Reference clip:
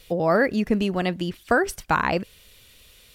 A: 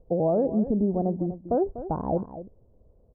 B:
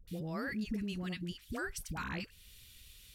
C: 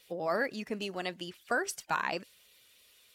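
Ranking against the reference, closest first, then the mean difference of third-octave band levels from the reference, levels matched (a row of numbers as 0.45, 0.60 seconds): C, B, A; 4.0, 8.5, 12.5 decibels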